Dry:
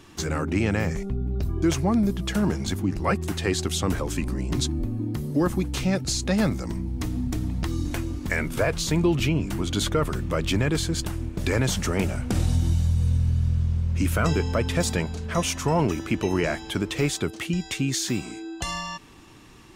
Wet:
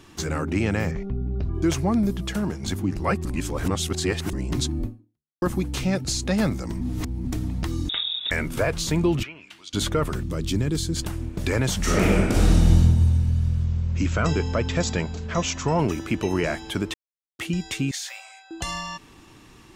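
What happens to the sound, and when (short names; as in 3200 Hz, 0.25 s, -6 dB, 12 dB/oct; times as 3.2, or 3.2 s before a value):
0.91–1.55 air absorption 210 m
2.17–2.63 fade out linear, to -6.5 dB
3.25–4.33 reverse
4.86–5.42 fade out exponential
6.81–7.25 reverse
7.89–8.31 inverted band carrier 3700 Hz
9.22–9.73 band-pass 1300 Hz -> 5200 Hz, Q 2
10.23–10.96 band shelf 1200 Hz -9.5 dB 2.8 oct
11.78–12.77 reverb throw, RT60 1.4 s, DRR -6 dB
13.64–15.79 brick-wall FIR low-pass 7900 Hz
16.94–17.39 mute
17.91–18.51 rippled Chebyshev high-pass 530 Hz, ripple 6 dB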